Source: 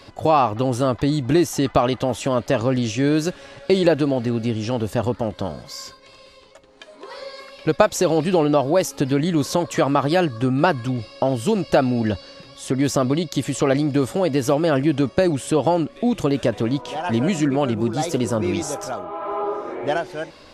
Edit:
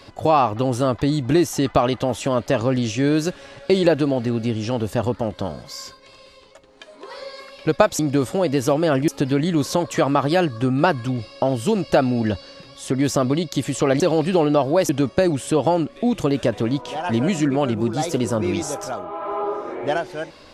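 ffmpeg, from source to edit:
-filter_complex "[0:a]asplit=5[s0][s1][s2][s3][s4];[s0]atrim=end=7.992[s5];[s1]atrim=start=13.798:end=14.892[s6];[s2]atrim=start=8.878:end=13.802[s7];[s3]atrim=start=7.988:end=8.882[s8];[s4]atrim=start=14.888[s9];[s5][s6]acrossfade=d=0.004:c1=hsin:c2=hsin[s10];[s10][s7]acrossfade=d=0.004:c1=hsin:c2=hsin[s11];[s11][s8]acrossfade=d=0.004:c1=hsin:c2=hsin[s12];[s12][s9]acrossfade=d=0.004:c1=hsin:c2=hsin"

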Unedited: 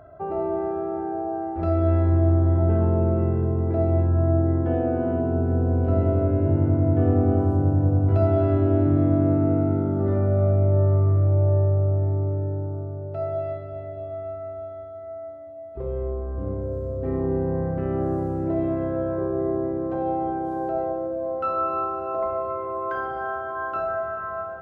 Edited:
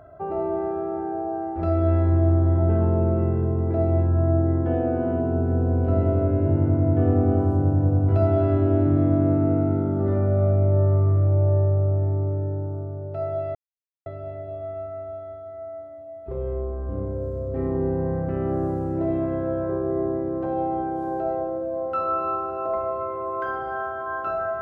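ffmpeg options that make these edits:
-filter_complex "[0:a]asplit=2[s0][s1];[s0]atrim=end=13.55,asetpts=PTS-STARTPTS,afade=t=out:st=13.546:d=0.004:c=hsin,apad=pad_dur=0.51[s2];[s1]atrim=start=13.55,asetpts=PTS-STARTPTS,afade=t=in:d=0.004:c=hsin[s3];[s2][s3]concat=n=2:v=0:a=1"

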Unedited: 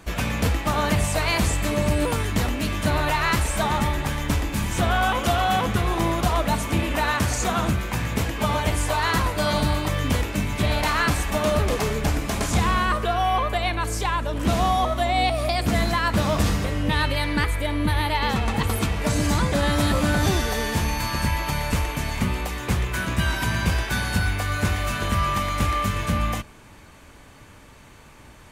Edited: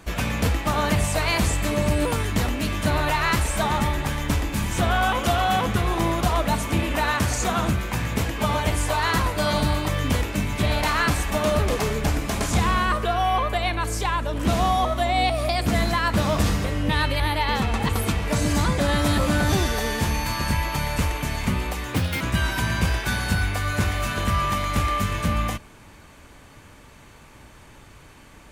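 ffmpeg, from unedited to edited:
-filter_complex "[0:a]asplit=4[s0][s1][s2][s3];[s0]atrim=end=17.202[s4];[s1]atrim=start=17.938:end=22.704[s5];[s2]atrim=start=22.7:end=23.05,asetpts=PTS-STARTPTS,asetrate=62622,aresample=44100[s6];[s3]atrim=start=23.046[s7];[s4][s5]acrossfade=d=0.004:c1=hsin:c2=hsin[s8];[s8][s6]acrossfade=d=0.004:c1=hsin:c2=hsin[s9];[s9][s7]acrossfade=d=0.004:c1=hsin:c2=hsin"

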